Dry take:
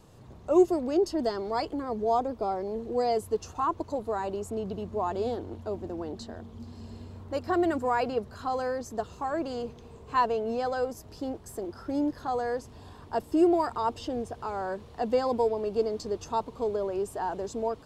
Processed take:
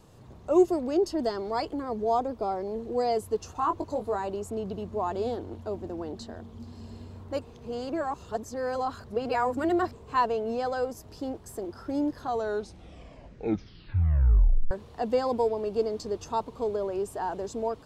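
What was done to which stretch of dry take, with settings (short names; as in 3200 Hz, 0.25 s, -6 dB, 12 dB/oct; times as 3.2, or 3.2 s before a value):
3.6–4.16 doubler 20 ms -6 dB
7.42–9.93 reverse
12.2 tape stop 2.51 s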